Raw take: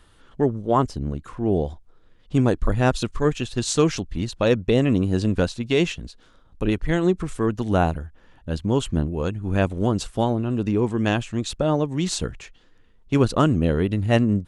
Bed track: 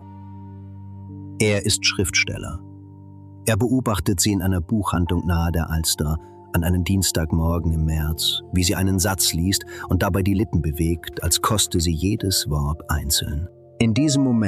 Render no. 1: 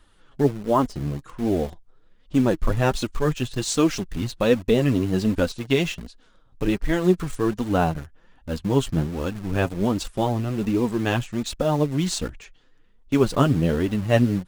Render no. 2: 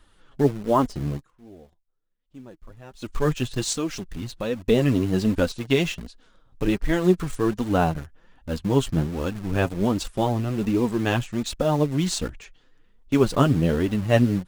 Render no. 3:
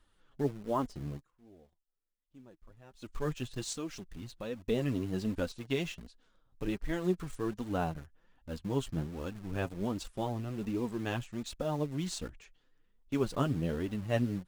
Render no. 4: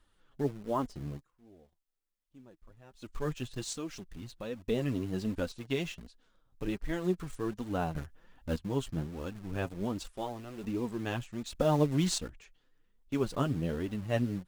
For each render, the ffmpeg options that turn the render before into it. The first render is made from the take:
-filter_complex "[0:a]asplit=2[s0][s1];[s1]acrusher=bits=4:mix=0:aa=0.000001,volume=0.422[s2];[s0][s2]amix=inputs=2:normalize=0,flanger=delay=3:depth=5:regen=30:speed=1.3:shape=triangular"
-filter_complex "[0:a]asettb=1/sr,asplit=3[s0][s1][s2];[s0]atrim=end=3.734[s3];[s1]atrim=start=3.73:end=4.67,asetpts=PTS-STARTPTS,afade=t=in:d=0.004:c=qsin,afade=t=out:st=0.936:d=0.004:c=qsin,acompressor=threshold=0.0141:ratio=1.5:attack=3.2:release=140:knee=1:detection=peak[s4];[s2]atrim=start=4.666[s5];[s3][s4]acrossfade=d=0.004:c1=hsin:c2=qsin[s6];[s6][s5]acrossfade=d=0.004:c1=qsin:c2=hsin,asplit=3[s7][s8][s9];[s7]atrim=end=1.31,asetpts=PTS-STARTPTS,afade=t=out:st=1.16:d=0.15:c=qua:silence=0.0668344[s10];[s8]atrim=start=1.31:end=2.95,asetpts=PTS-STARTPTS,volume=0.0668[s11];[s9]atrim=start=2.95,asetpts=PTS-STARTPTS,afade=t=in:d=0.15:c=qua:silence=0.0668344[s12];[s10][s11][s12]concat=n=3:v=0:a=1"
-af "volume=0.251"
-filter_complex "[0:a]asettb=1/sr,asplit=3[s0][s1][s2];[s0]atrim=end=10.064[s3];[s1]atrim=start=10.06:end=10.64,asetpts=PTS-STARTPTS,afade=t=in:d=0.004:c=qsin,afade=t=out:st=0.576:d=0.004:c=qsin,equalizer=f=130:w=0.74:g=-11[s4];[s2]atrim=start=10.636[s5];[s3][s4]acrossfade=d=0.004:c1=hsin:c2=qsin[s6];[s6][s5]acrossfade=d=0.004:c1=qsin:c2=hsin,asplit=5[s7][s8][s9][s10][s11];[s7]atrim=end=7.942[s12];[s8]atrim=start=7.938:end=8.562,asetpts=PTS-STARTPTS,volume=2.37[s13];[s9]atrim=start=8.558:end=11.552[s14];[s10]atrim=start=11.548:end=12.182,asetpts=PTS-STARTPTS,volume=2.24[s15];[s11]atrim=start=12.178[s16];[s12][s13]acrossfade=d=0.004:c1=hsin:c2=hsin[s17];[s17][s14]acrossfade=d=0.004:c1=hsin:c2=hsin[s18];[s18][s15]acrossfade=d=0.004:c1=hsin:c2=hsin[s19];[s19][s16]acrossfade=d=0.004:c1=hsin:c2=hsin"

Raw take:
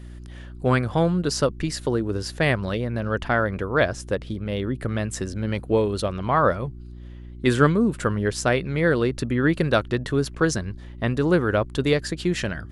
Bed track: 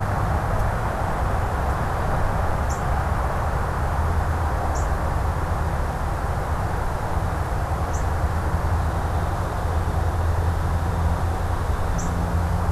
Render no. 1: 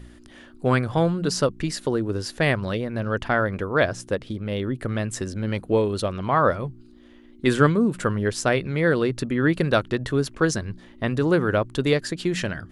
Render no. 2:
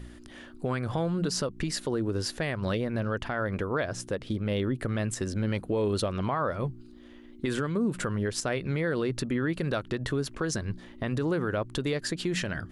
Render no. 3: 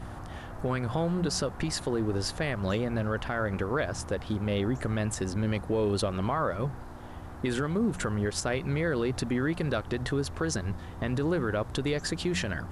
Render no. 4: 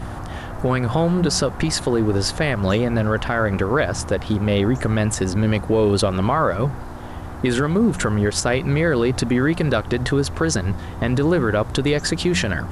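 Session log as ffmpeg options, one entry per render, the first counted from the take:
-af "bandreject=f=60:t=h:w=4,bandreject=f=120:t=h:w=4,bandreject=f=180:t=h:w=4"
-af "acompressor=threshold=0.0794:ratio=2,alimiter=limit=0.106:level=0:latency=1:release=130"
-filter_complex "[1:a]volume=0.106[s0];[0:a][s0]amix=inputs=2:normalize=0"
-af "volume=3.16"

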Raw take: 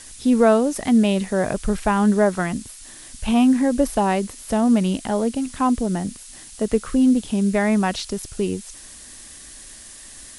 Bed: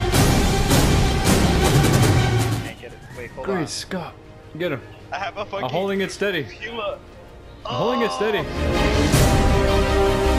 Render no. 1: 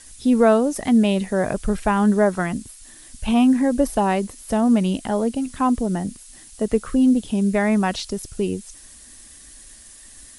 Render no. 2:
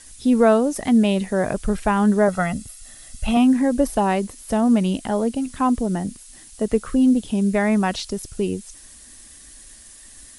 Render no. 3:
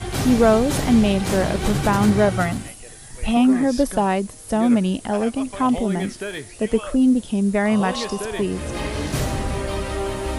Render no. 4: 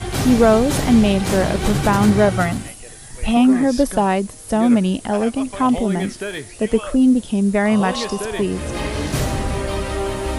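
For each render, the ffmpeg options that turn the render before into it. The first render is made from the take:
-af "afftdn=nr=6:nf=-42"
-filter_complex "[0:a]asettb=1/sr,asplit=3[s0][s1][s2];[s0]atrim=end=2.284[s3];[s1]atrim=start=2.28:end=3.37,asetpts=PTS-STARTPTS,afade=t=in:d=0.004:c=qsin,afade=t=out:st=1.086:d=0.004:c=qsin,aecho=1:1:1.5:0.65,atrim=end_sample=48069[s4];[s2]atrim=start=3.366[s5];[s3][s4]acrossfade=d=0.004:c1=hsin:c2=qsin[s6];[s6][s5]acrossfade=d=0.004:c1=qsin:c2=hsin"
-filter_complex "[1:a]volume=0.422[s0];[0:a][s0]amix=inputs=2:normalize=0"
-af "volume=1.33,alimiter=limit=0.794:level=0:latency=1"

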